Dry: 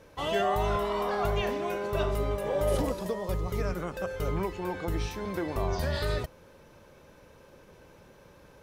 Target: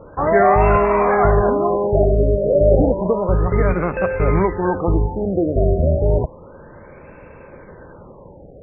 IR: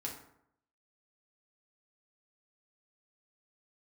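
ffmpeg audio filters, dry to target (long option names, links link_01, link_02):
-af "acrusher=bits=4:mode=log:mix=0:aa=0.000001,acontrast=73,afftfilt=real='re*lt(b*sr/1024,690*pow(2800/690,0.5+0.5*sin(2*PI*0.31*pts/sr)))':imag='im*lt(b*sr/1024,690*pow(2800/690,0.5+0.5*sin(2*PI*0.31*pts/sr)))':win_size=1024:overlap=0.75,volume=7.5dB"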